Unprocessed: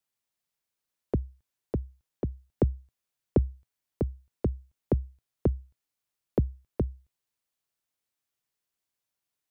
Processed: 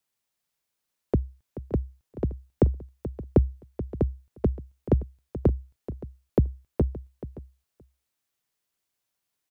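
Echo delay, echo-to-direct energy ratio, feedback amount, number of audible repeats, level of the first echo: 431 ms, -12.5 dB, no regular repeats, 3, -14.0 dB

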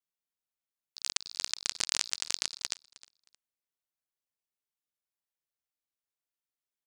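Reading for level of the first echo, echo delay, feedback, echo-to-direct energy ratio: -21.0 dB, 312 ms, 24%, -21.0 dB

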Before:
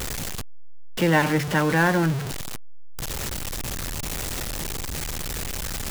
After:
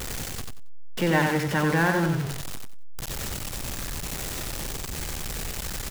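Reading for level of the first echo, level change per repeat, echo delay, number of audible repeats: -5.0 dB, -14.0 dB, 92 ms, 3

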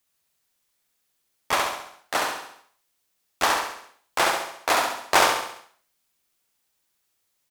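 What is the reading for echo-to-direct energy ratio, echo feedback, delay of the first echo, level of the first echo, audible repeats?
-2.5 dB, 49%, 68 ms, -3.5 dB, 6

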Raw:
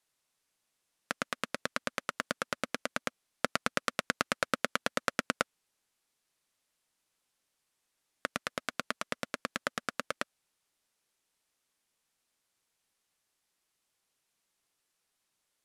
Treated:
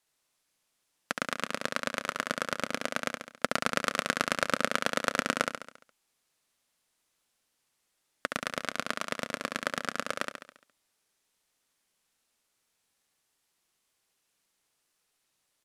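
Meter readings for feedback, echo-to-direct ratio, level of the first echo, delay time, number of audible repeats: 52%, -3.5 dB, -5.0 dB, 69 ms, 6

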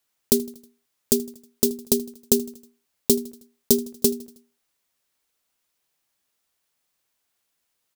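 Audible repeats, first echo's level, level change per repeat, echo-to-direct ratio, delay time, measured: 3, -21.5 dB, -5.0 dB, -20.0 dB, 79 ms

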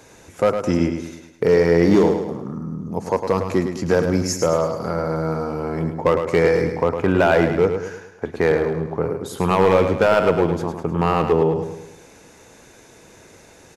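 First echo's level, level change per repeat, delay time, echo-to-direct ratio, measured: -7.5 dB, -6.5 dB, 106 ms, -6.5 dB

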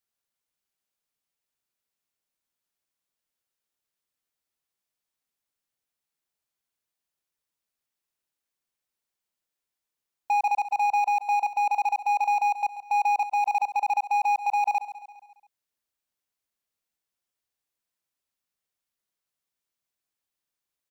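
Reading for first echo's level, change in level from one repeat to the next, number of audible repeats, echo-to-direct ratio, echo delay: -13.0 dB, -5.5 dB, 4, -11.5 dB, 137 ms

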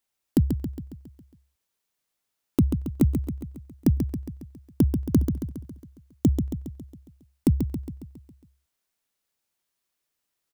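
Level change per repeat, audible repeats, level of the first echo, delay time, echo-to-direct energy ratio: -5.0 dB, 6, -7.0 dB, 137 ms, -5.5 dB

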